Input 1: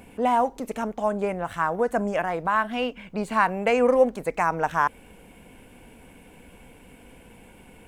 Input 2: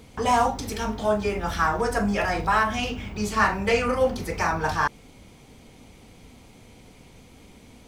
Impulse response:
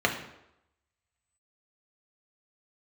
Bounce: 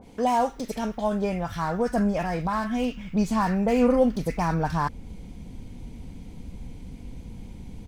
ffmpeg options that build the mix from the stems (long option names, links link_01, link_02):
-filter_complex "[0:a]asubboost=boost=6:cutoff=210,lowpass=frequency=1000:width=0.5412,lowpass=frequency=1000:width=1.3066,volume=0dB[link_01];[1:a]highpass=frequency=1400:width=0.5412,highpass=frequency=1400:width=1.3066,volume=29.5dB,asoftclip=hard,volume=-29.5dB,adynamicequalizer=threshold=0.00631:dfrequency=1900:dqfactor=0.7:tfrequency=1900:tqfactor=0.7:attack=5:release=100:ratio=0.375:range=2:mode=cutabove:tftype=highshelf,adelay=8,volume=-4dB[link_02];[link_01][link_02]amix=inputs=2:normalize=0"